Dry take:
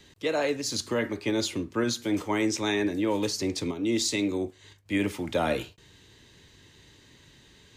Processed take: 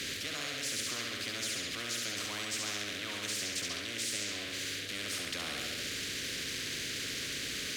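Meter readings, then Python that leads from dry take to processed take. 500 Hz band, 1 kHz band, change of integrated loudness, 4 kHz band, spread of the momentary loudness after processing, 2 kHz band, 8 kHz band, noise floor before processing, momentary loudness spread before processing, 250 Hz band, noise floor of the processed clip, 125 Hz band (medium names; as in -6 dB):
-16.5 dB, -11.0 dB, -6.5 dB, +1.0 dB, 2 LU, -1.5 dB, 0.0 dB, -57 dBFS, 4 LU, -17.5 dB, -40 dBFS, -11.0 dB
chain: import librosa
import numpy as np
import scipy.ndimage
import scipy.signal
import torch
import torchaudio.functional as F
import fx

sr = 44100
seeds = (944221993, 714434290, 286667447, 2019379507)

p1 = x + 0.5 * 10.0 ** (-32.0 / 20.0) * np.sign(x)
p2 = fx.vowel_filter(p1, sr, vowel='i')
p3 = fx.high_shelf(p2, sr, hz=5800.0, db=8.5)
p4 = p3 + fx.room_flutter(p3, sr, wall_m=11.7, rt60_s=0.75, dry=0)
p5 = fx.spectral_comp(p4, sr, ratio=10.0)
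y = F.gain(torch.from_numpy(p5), -1.5).numpy()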